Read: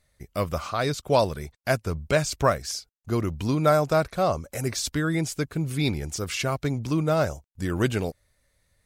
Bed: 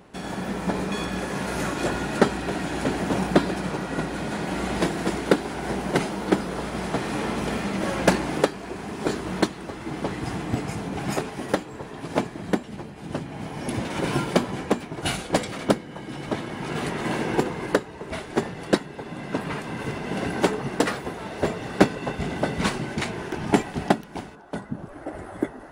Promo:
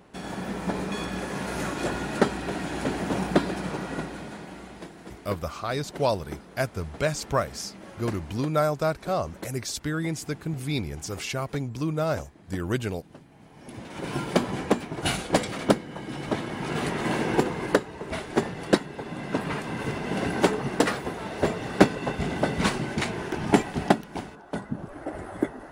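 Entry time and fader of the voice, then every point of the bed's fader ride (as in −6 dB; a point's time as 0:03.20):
4.90 s, −3.5 dB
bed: 0:03.89 −3 dB
0:04.81 −18 dB
0:13.46 −18 dB
0:14.48 0 dB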